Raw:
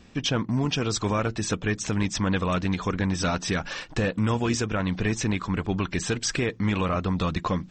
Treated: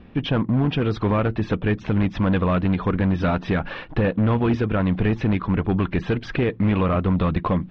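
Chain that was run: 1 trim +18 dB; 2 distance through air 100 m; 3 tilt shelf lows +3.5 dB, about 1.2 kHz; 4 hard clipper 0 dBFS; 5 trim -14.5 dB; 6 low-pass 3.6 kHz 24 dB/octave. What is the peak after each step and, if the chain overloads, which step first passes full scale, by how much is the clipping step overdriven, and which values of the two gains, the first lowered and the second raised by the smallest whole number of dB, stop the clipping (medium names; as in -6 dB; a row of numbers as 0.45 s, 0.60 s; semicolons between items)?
+4.0 dBFS, +4.0 dBFS, +6.5 dBFS, 0.0 dBFS, -14.5 dBFS, -13.5 dBFS; step 1, 6.5 dB; step 1 +11 dB, step 5 -7.5 dB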